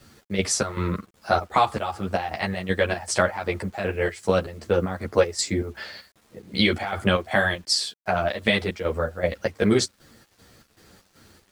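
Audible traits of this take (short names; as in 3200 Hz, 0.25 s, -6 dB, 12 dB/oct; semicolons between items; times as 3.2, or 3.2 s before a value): chopped level 2.6 Hz, depth 65%, duty 60%; a quantiser's noise floor 10-bit, dither none; a shimmering, thickened sound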